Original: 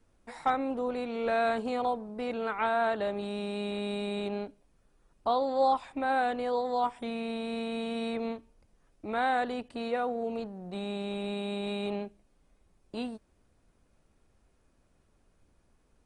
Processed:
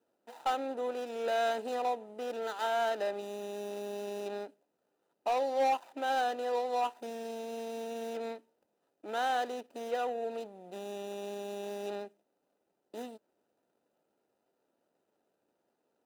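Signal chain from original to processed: median filter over 25 samples; HPF 400 Hz 12 dB/oct; high shelf 5700 Hz +5.5 dB; notch comb 1100 Hz; overloaded stage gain 23.5 dB

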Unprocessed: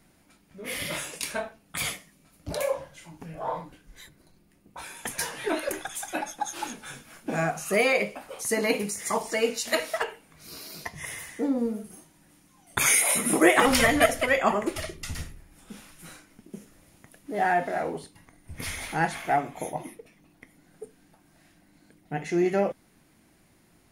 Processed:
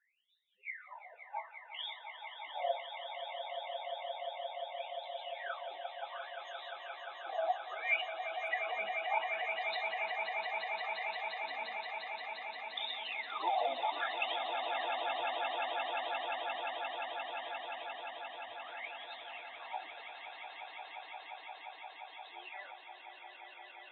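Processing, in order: harmoniser +4 st -5 dB; wah 0.64 Hz 690–3700 Hz, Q 13; loudest bins only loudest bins 16; swelling echo 0.175 s, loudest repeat 8, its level -8 dB

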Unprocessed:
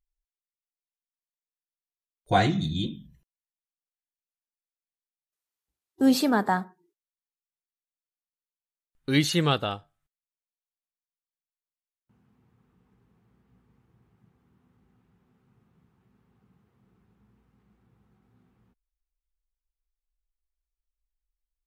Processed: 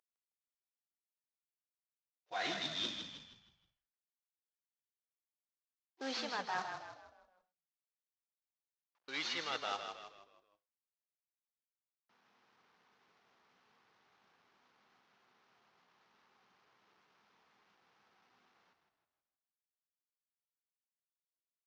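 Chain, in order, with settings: CVSD 32 kbps; HPF 820 Hz 12 dB/oct; reverse; compressor 12:1, threshold -42 dBFS, peak gain reduction 21.5 dB; reverse; frequency-shifting echo 0.158 s, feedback 44%, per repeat -37 Hz, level -6.5 dB; mismatched tape noise reduction decoder only; gain +5.5 dB

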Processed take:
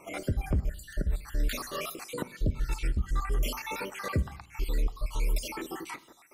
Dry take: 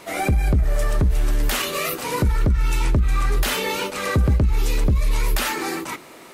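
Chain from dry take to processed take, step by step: random spectral dropouts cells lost 59%; on a send: reverb RT60 0.65 s, pre-delay 3 ms, DRR 16 dB; on the sum: gain -8.5 dB

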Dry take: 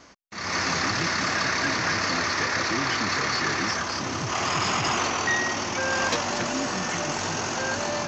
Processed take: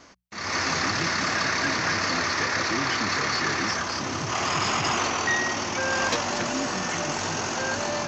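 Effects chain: notches 60/120/180 Hz

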